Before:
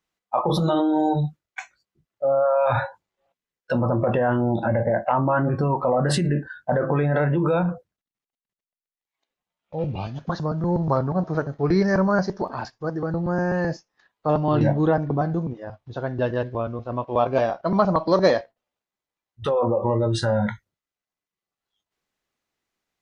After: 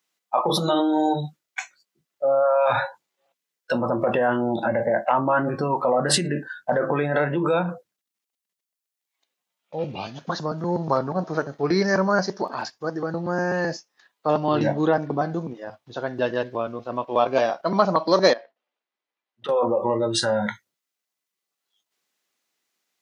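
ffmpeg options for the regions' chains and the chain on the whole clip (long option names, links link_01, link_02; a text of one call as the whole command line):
ffmpeg -i in.wav -filter_complex "[0:a]asettb=1/sr,asplit=3[link_01][link_02][link_03];[link_01]atrim=end=18.334[link_04];[link_02]atrim=start=18.33:end=19.49,asetpts=PTS-STARTPTS,afade=type=in:duration=0.004:curve=qsin,afade=type=out:start_time=1.156:duration=0.004:curve=qsin,acompressor=threshold=-32dB:ratio=6:attack=3.2:release=140:knee=1:detection=peak,highpass=220,lowpass=3100[link_05];[link_03]atrim=start=19.486[link_06];[link_04][link_05]acrossfade=duration=0.004:curve1=hsin:curve2=qsin[link_07];[link_07][link_06]acrossfade=duration=0.004:curve1=qsin:curve2=hsin,highpass=210,highshelf=frequency=2500:gain=9.5" out.wav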